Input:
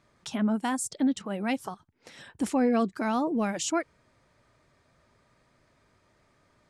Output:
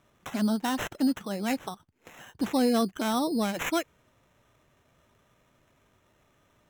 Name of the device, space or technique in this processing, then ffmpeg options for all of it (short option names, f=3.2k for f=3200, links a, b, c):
crushed at another speed: -af "asetrate=22050,aresample=44100,acrusher=samples=19:mix=1:aa=0.000001,asetrate=88200,aresample=44100"